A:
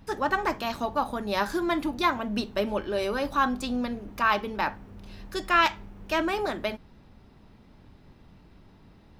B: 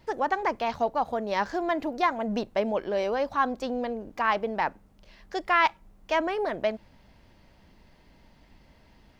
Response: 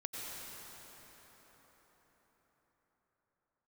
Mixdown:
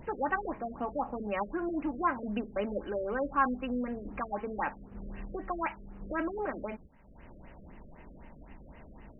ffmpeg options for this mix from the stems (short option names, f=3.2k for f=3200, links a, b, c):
-filter_complex "[0:a]agate=range=-36dB:threshold=-45dB:ratio=16:detection=peak,volume=-5.5dB[a];[1:a]lowpass=f=6k:w=0.5412,lowpass=f=6k:w=1.3066,adynamicequalizer=threshold=0.00891:dfrequency=1500:dqfactor=1.5:tfrequency=1500:tqfactor=1.5:attack=5:release=100:ratio=0.375:range=2.5:mode=boostabove:tftype=bell,volume=-14.5dB[b];[a][b]amix=inputs=2:normalize=0,equalizer=f=100:t=o:w=0.22:g=-12.5,acompressor=mode=upward:threshold=-31dB:ratio=2.5,afftfilt=real='re*lt(b*sr/1024,610*pow(3100/610,0.5+0.5*sin(2*PI*3.9*pts/sr)))':imag='im*lt(b*sr/1024,610*pow(3100/610,0.5+0.5*sin(2*PI*3.9*pts/sr)))':win_size=1024:overlap=0.75"